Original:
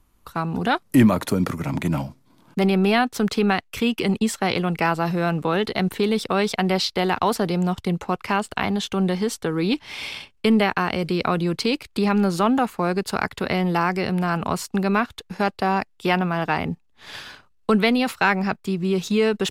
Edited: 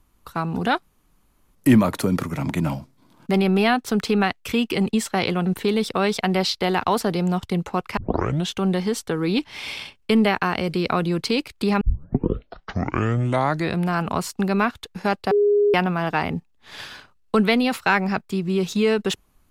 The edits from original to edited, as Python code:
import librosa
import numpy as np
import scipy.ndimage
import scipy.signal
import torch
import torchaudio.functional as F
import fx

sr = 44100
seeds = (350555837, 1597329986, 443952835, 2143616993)

y = fx.edit(x, sr, fx.insert_room_tone(at_s=0.83, length_s=0.72),
    fx.cut(start_s=4.74, length_s=1.07),
    fx.tape_start(start_s=8.32, length_s=0.52),
    fx.tape_start(start_s=12.16, length_s=2.06),
    fx.bleep(start_s=15.66, length_s=0.43, hz=411.0, db=-14.0), tone=tone)